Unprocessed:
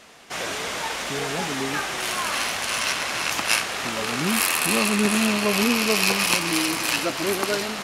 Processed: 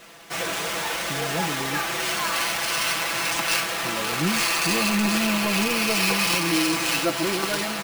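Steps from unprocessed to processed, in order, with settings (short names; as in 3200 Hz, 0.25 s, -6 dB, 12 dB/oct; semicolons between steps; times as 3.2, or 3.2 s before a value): careless resampling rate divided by 3×, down none, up hold; soft clip -18 dBFS, distortion -13 dB; comb 6 ms, depth 79%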